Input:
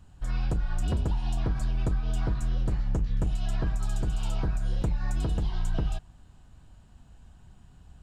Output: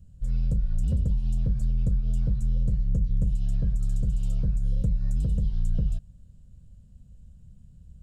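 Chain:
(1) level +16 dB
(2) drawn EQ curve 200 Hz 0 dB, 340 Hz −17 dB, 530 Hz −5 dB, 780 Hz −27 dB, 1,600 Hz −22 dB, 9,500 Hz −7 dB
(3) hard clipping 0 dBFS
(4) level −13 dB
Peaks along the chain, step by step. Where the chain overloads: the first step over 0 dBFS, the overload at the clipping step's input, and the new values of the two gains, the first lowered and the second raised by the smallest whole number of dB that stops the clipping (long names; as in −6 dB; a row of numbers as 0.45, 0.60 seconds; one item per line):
−3.5, −2.5, −2.5, −15.5 dBFS
no step passes full scale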